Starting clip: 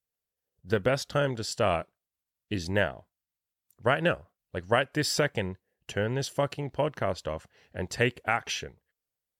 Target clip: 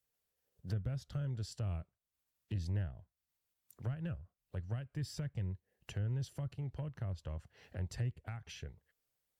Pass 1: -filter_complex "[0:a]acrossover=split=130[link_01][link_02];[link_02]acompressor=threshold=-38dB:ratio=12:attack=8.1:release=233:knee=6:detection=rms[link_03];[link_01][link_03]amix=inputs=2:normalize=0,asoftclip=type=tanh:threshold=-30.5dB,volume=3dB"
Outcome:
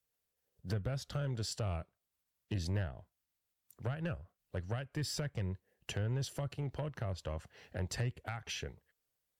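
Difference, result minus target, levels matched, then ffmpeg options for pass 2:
downward compressor: peak gain reduction −9.5 dB
-filter_complex "[0:a]acrossover=split=130[link_01][link_02];[link_02]acompressor=threshold=-48.5dB:ratio=12:attack=8.1:release=233:knee=6:detection=rms[link_03];[link_01][link_03]amix=inputs=2:normalize=0,asoftclip=type=tanh:threshold=-30.5dB,volume=3dB"

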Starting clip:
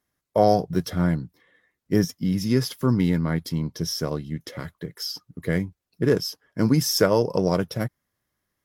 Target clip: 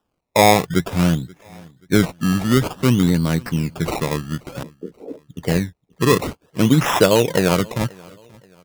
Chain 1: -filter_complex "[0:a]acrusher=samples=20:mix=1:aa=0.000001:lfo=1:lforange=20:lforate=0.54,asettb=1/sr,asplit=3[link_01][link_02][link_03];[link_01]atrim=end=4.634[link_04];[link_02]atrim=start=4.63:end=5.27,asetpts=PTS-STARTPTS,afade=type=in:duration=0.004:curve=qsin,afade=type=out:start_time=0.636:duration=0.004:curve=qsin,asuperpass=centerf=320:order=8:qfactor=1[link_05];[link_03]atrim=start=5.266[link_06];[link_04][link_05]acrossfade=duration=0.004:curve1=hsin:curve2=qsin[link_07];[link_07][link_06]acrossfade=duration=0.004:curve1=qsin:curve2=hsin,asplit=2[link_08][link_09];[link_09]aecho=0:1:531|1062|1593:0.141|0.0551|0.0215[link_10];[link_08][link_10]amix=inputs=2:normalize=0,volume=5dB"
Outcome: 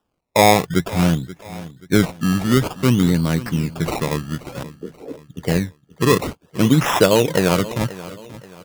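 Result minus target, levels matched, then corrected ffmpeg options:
echo-to-direct +8 dB
-filter_complex "[0:a]acrusher=samples=20:mix=1:aa=0.000001:lfo=1:lforange=20:lforate=0.54,asettb=1/sr,asplit=3[link_01][link_02][link_03];[link_01]atrim=end=4.634[link_04];[link_02]atrim=start=4.63:end=5.27,asetpts=PTS-STARTPTS,afade=type=in:duration=0.004:curve=qsin,afade=type=out:start_time=0.636:duration=0.004:curve=qsin,asuperpass=centerf=320:order=8:qfactor=1[link_05];[link_03]atrim=start=5.266[link_06];[link_04][link_05]acrossfade=duration=0.004:curve1=hsin:curve2=qsin[link_07];[link_07][link_06]acrossfade=duration=0.004:curve1=qsin:curve2=hsin,asplit=2[link_08][link_09];[link_09]aecho=0:1:531|1062:0.0562|0.0219[link_10];[link_08][link_10]amix=inputs=2:normalize=0,volume=5dB"

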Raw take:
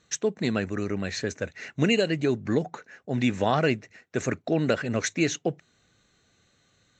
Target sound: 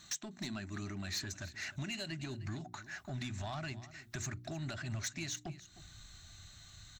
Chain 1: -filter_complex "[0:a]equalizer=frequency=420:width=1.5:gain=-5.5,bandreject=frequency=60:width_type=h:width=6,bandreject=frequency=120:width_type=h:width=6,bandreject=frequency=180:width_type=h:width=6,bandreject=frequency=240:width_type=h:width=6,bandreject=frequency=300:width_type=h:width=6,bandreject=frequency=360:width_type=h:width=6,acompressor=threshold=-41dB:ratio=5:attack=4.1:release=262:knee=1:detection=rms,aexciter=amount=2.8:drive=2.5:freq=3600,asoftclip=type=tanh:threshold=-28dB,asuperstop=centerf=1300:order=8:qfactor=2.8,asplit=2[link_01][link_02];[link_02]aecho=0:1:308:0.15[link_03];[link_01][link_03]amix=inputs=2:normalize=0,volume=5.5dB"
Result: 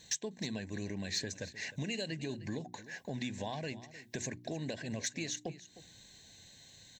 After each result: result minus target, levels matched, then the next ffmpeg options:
soft clipping: distortion −13 dB; 500 Hz band +5.0 dB; 125 Hz band −3.5 dB
-filter_complex "[0:a]equalizer=frequency=420:width=1.5:gain=-5.5,bandreject=frequency=60:width_type=h:width=6,bandreject=frequency=120:width_type=h:width=6,bandreject=frequency=180:width_type=h:width=6,bandreject=frequency=240:width_type=h:width=6,bandreject=frequency=300:width_type=h:width=6,bandreject=frequency=360:width_type=h:width=6,acompressor=threshold=-41dB:ratio=5:attack=4.1:release=262:knee=1:detection=rms,aexciter=amount=2.8:drive=2.5:freq=3600,asoftclip=type=tanh:threshold=-38dB,asuperstop=centerf=1300:order=8:qfactor=2.8,asplit=2[link_01][link_02];[link_02]aecho=0:1:308:0.15[link_03];[link_01][link_03]amix=inputs=2:normalize=0,volume=5.5dB"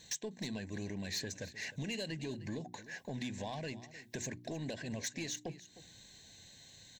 500 Hz band +5.0 dB; 125 Hz band −3.0 dB
-filter_complex "[0:a]equalizer=frequency=420:width=1.5:gain=-5.5,bandreject=frequency=60:width_type=h:width=6,bandreject=frequency=120:width_type=h:width=6,bandreject=frequency=180:width_type=h:width=6,bandreject=frequency=240:width_type=h:width=6,bandreject=frequency=300:width_type=h:width=6,bandreject=frequency=360:width_type=h:width=6,acompressor=threshold=-41dB:ratio=5:attack=4.1:release=262:knee=1:detection=rms,aexciter=amount=2.8:drive=2.5:freq=3600,asoftclip=type=tanh:threshold=-38dB,asuperstop=centerf=480:order=8:qfactor=2.8,asplit=2[link_01][link_02];[link_02]aecho=0:1:308:0.15[link_03];[link_01][link_03]amix=inputs=2:normalize=0,volume=5.5dB"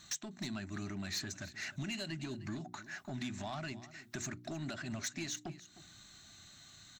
125 Hz band −3.0 dB
-filter_complex "[0:a]equalizer=frequency=420:width=1.5:gain=-5.5,bandreject=frequency=60:width_type=h:width=6,bandreject=frequency=120:width_type=h:width=6,bandreject=frequency=180:width_type=h:width=6,bandreject=frequency=240:width_type=h:width=6,bandreject=frequency=300:width_type=h:width=6,bandreject=frequency=360:width_type=h:width=6,acompressor=threshold=-41dB:ratio=5:attack=4.1:release=262:knee=1:detection=rms,asubboost=boost=8.5:cutoff=81,aexciter=amount=2.8:drive=2.5:freq=3600,asoftclip=type=tanh:threshold=-38dB,asuperstop=centerf=480:order=8:qfactor=2.8,asplit=2[link_01][link_02];[link_02]aecho=0:1:308:0.15[link_03];[link_01][link_03]amix=inputs=2:normalize=0,volume=5.5dB"

